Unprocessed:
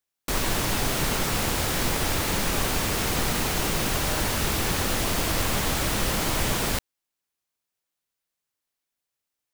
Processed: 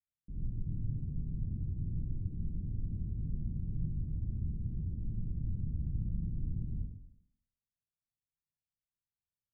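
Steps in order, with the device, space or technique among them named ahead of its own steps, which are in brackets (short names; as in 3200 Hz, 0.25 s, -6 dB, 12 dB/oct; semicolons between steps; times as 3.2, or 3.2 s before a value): club heard from the street (limiter -20.5 dBFS, peak gain reduction 8.5 dB; LPF 190 Hz 24 dB/oct; reverb RT60 0.80 s, pre-delay 56 ms, DRR -5.5 dB); gain -7 dB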